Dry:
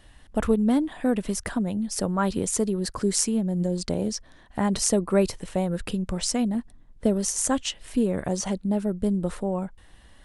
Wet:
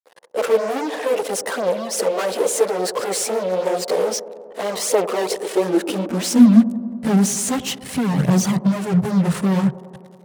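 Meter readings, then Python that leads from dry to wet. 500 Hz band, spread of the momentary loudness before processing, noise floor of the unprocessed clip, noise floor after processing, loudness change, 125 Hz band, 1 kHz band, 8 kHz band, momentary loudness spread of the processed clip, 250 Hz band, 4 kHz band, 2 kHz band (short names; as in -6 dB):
+8.0 dB, 7 LU, -53 dBFS, -43 dBFS, +6.5 dB, +7.0 dB, +7.5 dB, +3.5 dB, 7 LU, +6.5 dB, +5.0 dB, +8.5 dB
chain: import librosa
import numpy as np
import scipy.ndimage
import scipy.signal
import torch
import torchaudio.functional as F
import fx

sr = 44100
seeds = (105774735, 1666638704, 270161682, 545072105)

p1 = fx.fuzz(x, sr, gain_db=38.0, gate_db=-44.0)
p2 = fx.chorus_voices(p1, sr, voices=2, hz=1.5, base_ms=14, depth_ms=3.0, mix_pct=70)
p3 = fx.filter_sweep_highpass(p2, sr, from_hz=480.0, to_hz=140.0, start_s=5.2, end_s=7.32, q=6.0)
p4 = p3 + fx.echo_wet_bandpass(p3, sr, ms=94, feedback_pct=77, hz=430.0, wet_db=-14.0, dry=0)
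y = p4 * 10.0 ** (-6.0 / 20.0)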